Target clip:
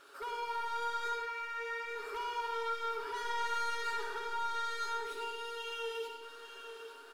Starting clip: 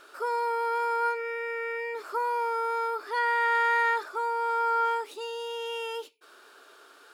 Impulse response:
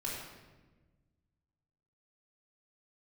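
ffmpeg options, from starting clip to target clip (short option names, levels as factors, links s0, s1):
-filter_complex "[0:a]equalizer=f=680:w=5.3:g=-4,aecho=1:1:7.2:0.65,asoftclip=type=tanh:threshold=0.0299,aecho=1:1:849|1698|2547|3396:0.335|0.131|0.0509|0.0199,asplit=2[s0][s1];[1:a]atrim=start_sample=2205,adelay=61[s2];[s1][s2]afir=irnorm=-1:irlink=0,volume=0.668[s3];[s0][s3]amix=inputs=2:normalize=0,volume=0.447"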